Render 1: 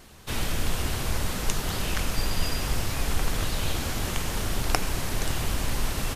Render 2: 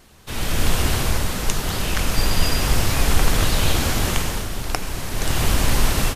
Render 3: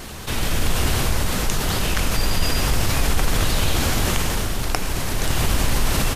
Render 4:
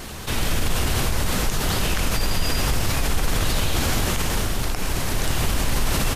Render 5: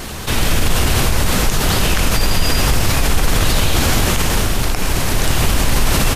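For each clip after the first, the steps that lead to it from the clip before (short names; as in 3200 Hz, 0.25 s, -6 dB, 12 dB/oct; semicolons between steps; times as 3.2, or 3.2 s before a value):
AGC gain up to 11.5 dB; gain -1 dB
fast leveller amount 50%; gain -4.5 dB
limiter -11.5 dBFS, peak gain reduction 9 dB
rattling part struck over -28 dBFS, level -30 dBFS; gain +7 dB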